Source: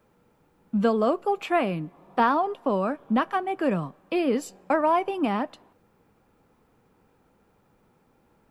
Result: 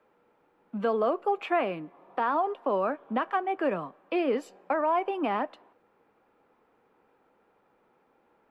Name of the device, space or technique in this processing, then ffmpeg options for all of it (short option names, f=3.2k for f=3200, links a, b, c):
DJ mixer with the lows and highs turned down: -filter_complex "[0:a]acrossover=split=290 3300:gain=0.141 1 0.178[a][b][c];[a][b][c]amix=inputs=3:normalize=0,alimiter=limit=-17dB:level=0:latency=1:release=70"